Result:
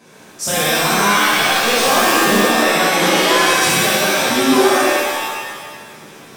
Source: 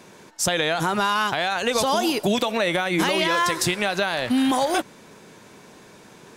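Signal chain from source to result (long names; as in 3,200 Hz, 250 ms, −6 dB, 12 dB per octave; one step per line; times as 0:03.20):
low-shelf EQ 66 Hz −6.5 dB
0:01.15–0:02.28: log-companded quantiser 4 bits
reverb with rising layers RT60 1.4 s, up +7 semitones, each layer −2 dB, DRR −9.5 dB
level −5 dB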